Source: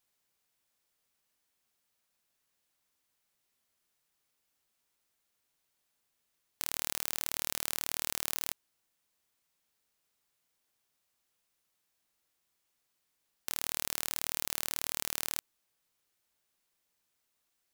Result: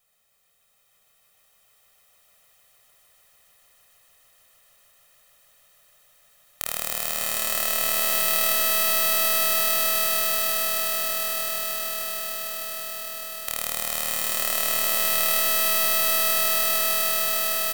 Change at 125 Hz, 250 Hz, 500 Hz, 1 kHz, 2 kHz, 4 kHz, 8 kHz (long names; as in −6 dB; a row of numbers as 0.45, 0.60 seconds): can't be measured, +10.5 dB, +22.0 dB, +19.0 dB, +18.0 dB, +16.0 dB, +14.0 dB